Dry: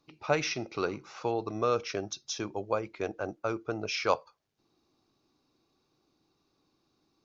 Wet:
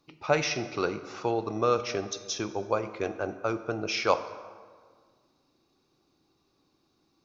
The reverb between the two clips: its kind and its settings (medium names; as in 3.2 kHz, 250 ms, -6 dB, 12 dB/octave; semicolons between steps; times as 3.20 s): plate-style reverb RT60 1.7 s, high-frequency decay 0.65×, DRR 10.5 dB; trim +2.5 dB